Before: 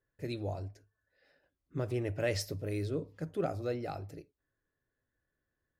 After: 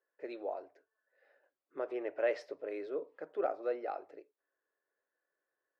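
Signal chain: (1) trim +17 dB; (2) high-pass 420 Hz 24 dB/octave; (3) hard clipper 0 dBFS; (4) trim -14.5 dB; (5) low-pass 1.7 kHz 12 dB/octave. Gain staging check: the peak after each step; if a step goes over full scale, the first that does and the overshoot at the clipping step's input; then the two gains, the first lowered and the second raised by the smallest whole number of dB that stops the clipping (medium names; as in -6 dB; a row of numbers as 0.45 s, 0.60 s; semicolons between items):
-3.0 dBFS, -4.5 dBFS, -4.5 dBFS, -19.0 dBFS, -20.0 dBFS; nothing clips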